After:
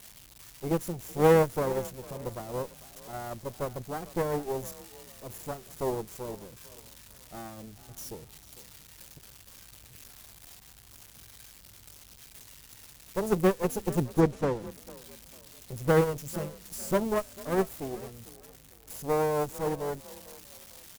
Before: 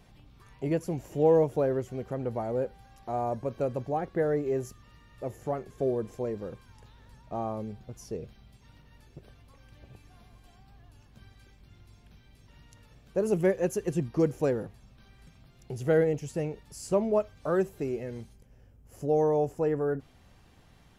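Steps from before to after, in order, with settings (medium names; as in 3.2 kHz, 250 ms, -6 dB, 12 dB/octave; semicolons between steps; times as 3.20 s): zero-crossing glitches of -23.5 dBFS; bass shelf 320 Hz +10.5 dB; Chebyshev shaper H 3 -17 dB, 4 -20 dB, 8 -25 dB, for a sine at -8 dBFS; 14.14–14.66 s: distance through air 72 m; frequency-shifting echo 449 ms, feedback 37%, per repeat +37 Hz, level -14 dB; upward expansion 1.5:1, over -38 dBFS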